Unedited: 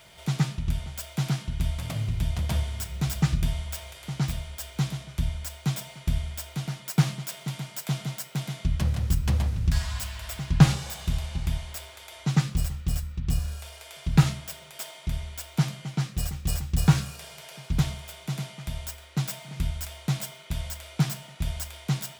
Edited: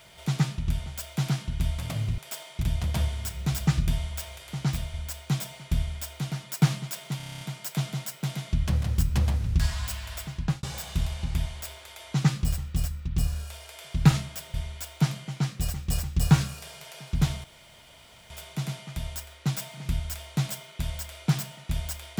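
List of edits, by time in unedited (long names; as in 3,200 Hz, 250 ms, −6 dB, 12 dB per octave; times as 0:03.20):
0:04.49–0:05.30: remove
0:07.53: stutter 0.03 s, 9 plays
0:10.27–0:10.75: fade out
0:14.66–0:15.11: move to 0:02.18
0:18.01: splice in room tone 0.86 s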